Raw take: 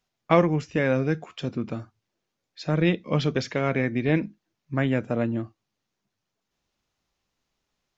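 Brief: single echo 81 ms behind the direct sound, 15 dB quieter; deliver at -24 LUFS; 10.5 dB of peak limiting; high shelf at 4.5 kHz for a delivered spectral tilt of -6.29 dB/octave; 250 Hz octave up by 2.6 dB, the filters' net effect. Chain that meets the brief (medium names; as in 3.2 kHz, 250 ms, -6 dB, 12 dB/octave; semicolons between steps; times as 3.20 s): peaking EQ 250 Hz +3.5 dB; treble shelf 4.5 kHz -4 dB; peak limiter -13.5 dBFS; delay 81 ms -15 dB; trim +2.5 dB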